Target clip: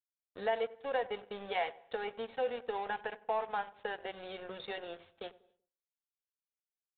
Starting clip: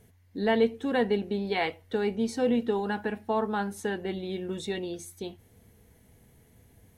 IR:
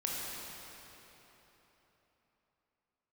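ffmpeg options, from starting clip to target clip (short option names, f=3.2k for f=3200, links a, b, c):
-filter_complex "[0:a]lowshelf=f=410:t=q:w=3:g=-12.5,bandreject=f=620:w=12,acompressor=threshold=-45dB:ratio=2,aeval=exprs='sgn(val(0))*max(abs(val(0))-0.00316,0)':c=same,asplit=2[a][b];[b]adelay=95,lowpass=f=980:p=1,volume=-17dB,asplit=2[c][d];[d]adelay=95,lowpass=f=980:p=1,volume=0.42,asplit=2[e][f];[f]adelay=95,lowpass=f=980:p=1,volume=0.42,asplit=2[g][h];[h]adelay=95,lowpass=f=980:p=1,volume=0.42[i];[a][c][e][g][i]amix=inputs=5:normalize=0,asplit=2[j][k];[1:a]atrim=start_sample=2205,afade=t=out:st=0.33:d=0.01,atrim=end_sample=14994[l];[k][l]afir=irnorm=-1:irlink=0,volume=-27.5dB[m];[j][m]amix=inputs=2:normalize=0,aresample=8000,aresample=44100,volume=5dB"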